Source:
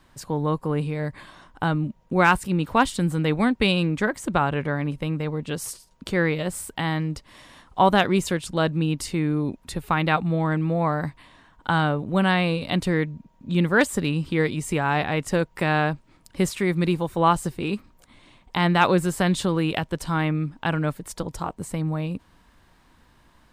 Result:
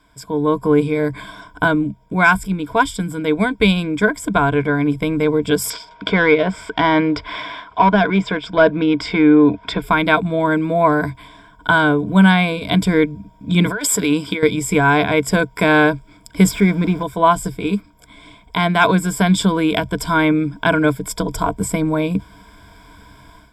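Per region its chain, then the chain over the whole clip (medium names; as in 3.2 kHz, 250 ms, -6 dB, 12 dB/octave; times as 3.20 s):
5.70–9.82 s: overdrive pedal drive 18 dB, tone 2.3 kHz, clips at -6 dBFS + distance through air 190 m + tape noise reduction on one side only encoder only
13.66–14.43 s: high-pass 410 Hz 6 dB/octave + compressor with a negative ratio -30 dBFS
16.51–17.03 s: jump at every zero crossing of -30.5 dBFS + low-pass 1.5 kHz 6 dB/octave
whole clip: rippled EQ curve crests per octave 1.7, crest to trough 16 dB; level rider; trim -1 dB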